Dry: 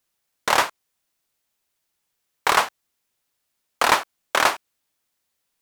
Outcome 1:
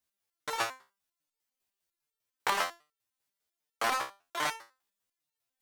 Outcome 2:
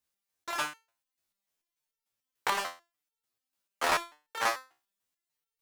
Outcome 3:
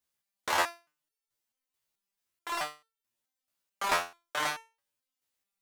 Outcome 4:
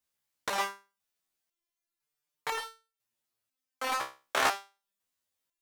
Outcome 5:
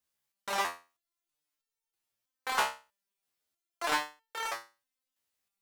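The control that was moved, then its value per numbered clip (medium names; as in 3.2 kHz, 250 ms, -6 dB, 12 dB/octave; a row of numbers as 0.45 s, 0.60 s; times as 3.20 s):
resonator arpeggio, rate: 10 Hz, 6.8 Hz, 4.6 Hz, 2 Hz, 3.1 Hz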